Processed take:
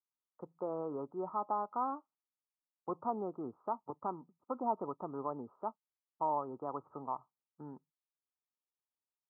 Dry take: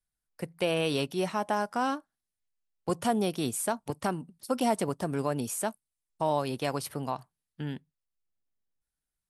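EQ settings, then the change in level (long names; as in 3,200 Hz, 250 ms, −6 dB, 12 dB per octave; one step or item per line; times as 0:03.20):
Chebyshev low-pass with heavy ripple 1,300 Hz, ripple 6 dB
first difference
parametric band 76 Hz +6.5 dB 2.3 octaves
+16.5 dB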